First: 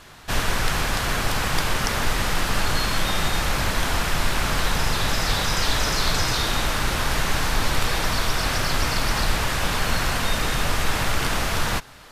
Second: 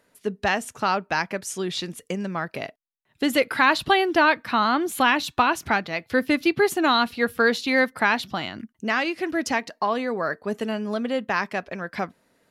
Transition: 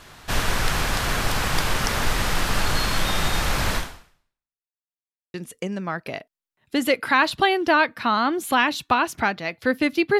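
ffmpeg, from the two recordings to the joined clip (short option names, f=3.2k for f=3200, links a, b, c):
-filter_complex "[0:a]apad=whole_dur=10.19,atrim=end=10.19,asplit=2[a][b];[a]atrim=end=4.66,asetpts=PTS-STARTPTS,afade=t=out:st=3.76:d=0.9:c=exp[c];[b]atrim=start=4.66:end=5.34,asetpts=PTS-STARTPTS,volume=0[d];[1:a]atrim=start=1.82:end=6.67,asetpts=PTS-STARTPTS,afade=t=in:d=0.004:c=hsin[e];[c][d][e]concat=n=3:v=0:a=1"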